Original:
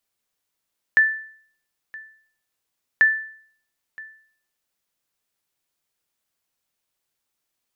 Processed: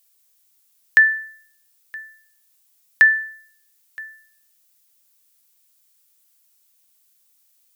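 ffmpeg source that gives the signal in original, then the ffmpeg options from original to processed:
-f lavfi -i "aevalsrc='0.376*(sin(2*PI*1760*mod(t,2.04))*exp(-6.91*mod(t,2.04)/0.56)+0.075*sin(2*PI*1760*max(mod(t,2.04)-0.97,0))*exp(-6.91*max(mod(t,2.04)-0.97,0)/0.56))':duration=4.08:sample_rate=44100"
-af "crystalizer=i=5:c=0"

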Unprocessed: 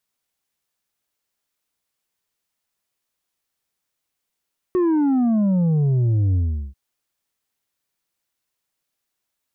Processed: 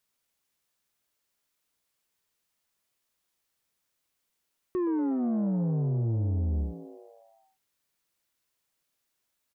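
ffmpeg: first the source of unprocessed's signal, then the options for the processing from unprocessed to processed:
-f lavfi -i "aevalsrc='0.158*clip((1.99-t)/0.39,0,1)*tanh(1.78*sin(2*PI*370*1.99/log(65/370)*(exp(log(65/370)*t/1.99)-1)))/tanh(1.78)':duration=1.99:sample_rate=44100"
-filter_complex "[0:a]bandreject=frequency=770:width=21,alimiter=level_in=1.5dB:limit=-24dB:level=0:latency=1,volume=-1.5dB,asplit=8[link_01][link_02][link_03][link_04][link_05][link_06][link_07][link_08];[link_02]adelay=119,afreqshift=100,volume=-15dB[link_09];[link_03]adelay=238,afreqshift=200,volume=-19.2dB[link_10];[link_04]adelay=357,afreqshift=300,volume=-23.3dB[link_11];[link_05]adelay=476,afreqshift=400,volume=-27.5dB[link_12];[link_06]adelay=595,afreqshift=500,volume=-31.6dB[link_13];[link_07]adelay=714,afreqshift=600,volume=-35.8dB[link_14];[link_08]adelay=833,afreqshift=700,volume=-39.9dB[link_15];[link_01][link_09][link_10][link_11][link_12][link_13][link_14][link_15]amix=inputs=8:normalize=0"

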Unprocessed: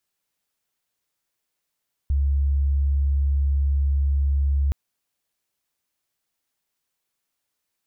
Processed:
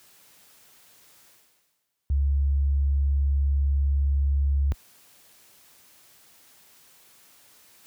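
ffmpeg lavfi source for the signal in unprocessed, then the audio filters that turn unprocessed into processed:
-f lavfi -i "sine=frequency=69.8:duration=2.62:sample_rate=44100,volume=0.56dB"
-af "highpass=60,areverse,acompressor=mode=upward:threshold=-35dB:ratio=2.5,areverse"

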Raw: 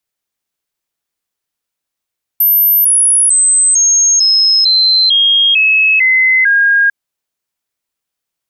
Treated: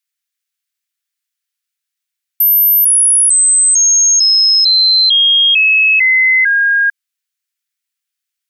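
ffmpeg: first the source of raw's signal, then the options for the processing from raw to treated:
-f lavfi -i "aevalsrc='0.473*clip(min(mod(t,0.45),0.45-mod(t,0.45))/0.005,0,1)*sin(2*PI*13000*pow(2,-floor(t/0.45)/3)*mod(t,0.45))':duration=4.5:sample_rate=44100"
-af "highpass=frequency=1500:width=0.5412,highpass=frequency=1500:width=1.3066"

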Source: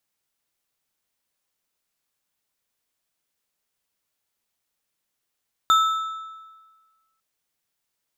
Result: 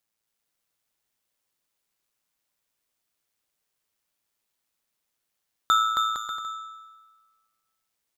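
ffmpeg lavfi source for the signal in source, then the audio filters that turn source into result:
-f lavfi -i "aevalsrc='0.237*pow(10,-3*t/1.46)*sin(2*PI*1310*t)+0.0841*pow(10,-3*t/1.077)*sin(2*PI*3611.7*t)+0.0299*pow(10,-3*t/0.88)*sin(2*PI*7079.2*t)+0.0106*pow(10,-3*t/0.757)*sin(2*PI*11702.2*t)':duration=1.5:sample_rate=44100"
-filter_complex "[0:a]tremolo=f=110:d=0.571,asplit=2[link_01][link_02];[link_02]aecho=0:1:270|459|591.3|683.9|748.7:0.631|0.398|0.251|0.158|0.1[link_03];[link_01][link_03]amix=inputs=2:normalize=0"

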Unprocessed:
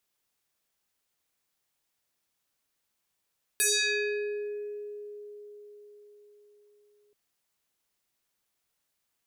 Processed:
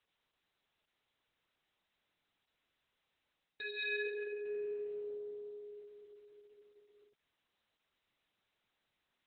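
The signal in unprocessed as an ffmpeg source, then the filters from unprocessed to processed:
-f lavfi -i "aevalsrc='0.0841*pow(10,-3*t/4.97)*sin(2*PI*415*t+6.2*pow(10,-3*t/1.57)*sin(2*PI*5.07*415*t))':duration=3.53:sample_rate=44100"
-af "areverse,acompressor=threshold=-36dB:ratio=16,areverse" -ar 48000 -c:a libopus -b:a 6k

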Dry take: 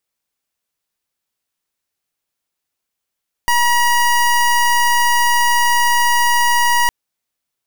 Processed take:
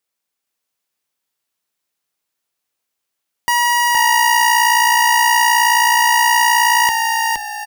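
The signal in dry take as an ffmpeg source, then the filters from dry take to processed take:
-f lavfi -i "aevalsrc='0.211*(2*lt(mod(959*t,1),0.25)-1)':duration=3.41:sample_rate=44100"
-filter_complex "[0:a]highpass=frequency=190:poles=1,asplit=2[link_01][link_02];[link_02]asplit=5[link_03][link_04][link_05][link_06][link_07];[link_03]adelay=467,afreqshift=-59,volume=-3dB[link_08];[link_04]adelay=934,afreqshift=-118,volume=-12.1dB[link_09];[link_05]adelay=1401,afreqshift=-177,volume=-21.2dB[link_10];[link_06]adelay=1868,afreqshift=-236,volume=-30.4dB[link_11];[link_07]adelay=2335,afreqshift=-295,volume=-39.5dB[link_12];[link_08][link_09][link_10][link_11][link_12]amix=inputs=5:normalize=0[link_13];[link_01][link_13]amix=inputs=2:normalize=0"

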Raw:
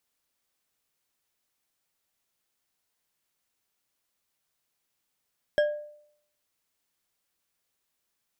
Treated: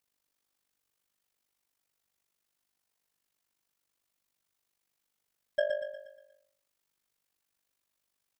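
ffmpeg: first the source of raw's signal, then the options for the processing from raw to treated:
-f lavfi -i "aevalsrc='0.133*pow(10,-3*t/0.67)*sin(2*PI*595*t)+0.0531*pow(10,-3*t/0.329)*sin(2*PI*1640.4*t)+0.0211*pow(10,-3*t/0.206)*sin(2*PI*3215.4*t)+0.00841*pow(10,-3*t/0.145)*sin(2*PI*5315.1*t)+0.00335*pow(10,-3*t/0.109)*sin(2*PI*7937.3*t)':duration=0.89:sample_rate=44100"
-af "tremolo=f=49:d=0.889,aecho=1:1:119|238|357|476|595|714:0.501|0.236|0.111|0.052|0.0245|0.0115"

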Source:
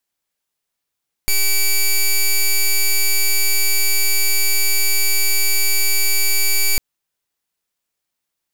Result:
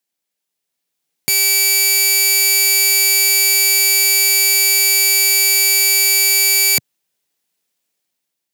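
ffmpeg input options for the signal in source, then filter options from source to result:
-f lavfi -i "aevalsrc='0.188*(2*lt(mod(2300*t,1),0.09)-1)':duration=5.5:sample_rate=44100"
-af "highpass=frequency=130:width=0.5412,highpass=frequency=130:width=1.3066,equalizer=frequency=1200:width=1.4:gain=-6,dynaudnorm=framelen=360:gausssize=5:maxgain=8dB"

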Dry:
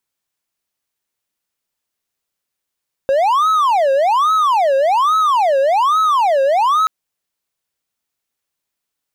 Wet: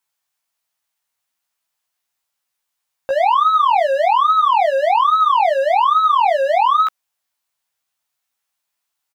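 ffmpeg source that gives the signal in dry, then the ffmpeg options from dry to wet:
-f lavfi -i "aevalsrc='0.355*(1-4*abs(mod((913.5*t-376.5/(2*PI*1.2)*sin(2*PI*1.2*t))+0.25,1)-0.5))':duration=3.78:sample_rate=44100"
-filter_complex "[0:a]lowshelf=frequency=580:width_type=q:width=1.5:gain=-7.5,asoftclip=type=tanh:threshold=-13dB,asplit=2[link_01][link_02];[link_02]adelay=15,volume=-2.5dB[link_03];[link_01][link_03]amix=inputs=2:normalize=0"

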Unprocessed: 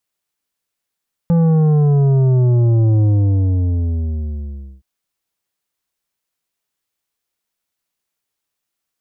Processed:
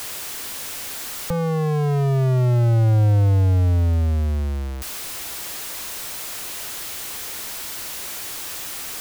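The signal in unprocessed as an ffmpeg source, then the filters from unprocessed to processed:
-f lavfi -i "aevalsrc='0.282*clip((3.52-t)/1.79,0,1)*tanh(2.82*sin(2*PI*170*3.52/log(65/170)*(exp(log(65/170)*t/3.52)-1)))/tanh(2.82)':duration=3.52:sample_rate=44100"
-filter_complex "[0:a]aeval=exprs='val(0)+0.5*0.0562*sgn(val(0))':channel_layout=same,equalizer=frequency=180:width_type=o:width=0.49:gain=-6,acrossover=split=120|440[link_01][link_02][link_03];[link_02]asoftclip=type=hard:threshold=-29.5dB[link_04];[link_01][link_04][link_03]amix=inputs=3:normalize=0"

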